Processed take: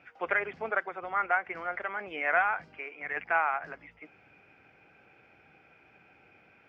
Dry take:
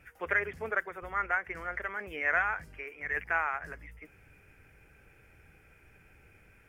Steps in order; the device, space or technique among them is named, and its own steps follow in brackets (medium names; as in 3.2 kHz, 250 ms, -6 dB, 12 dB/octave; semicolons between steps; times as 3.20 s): kitchen radio (cabinet simulation 210–4500 Hz, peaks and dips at 430 Hz -4 dB, 750 Hz +6 dB, 1.8 kHz -7 dB); trim +3.5 dB